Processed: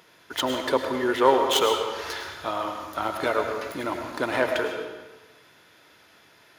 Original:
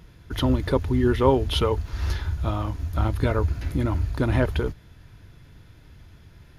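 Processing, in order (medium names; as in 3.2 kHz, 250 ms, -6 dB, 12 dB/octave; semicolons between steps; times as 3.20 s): tracing distortion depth 0.088 ms; high-pass 510 Hz 12 dB/octave; on a send: reverberation RT60 1.2 s, pre-delay 66 ms, DRR 4 dB; on the sum: trim +4 dB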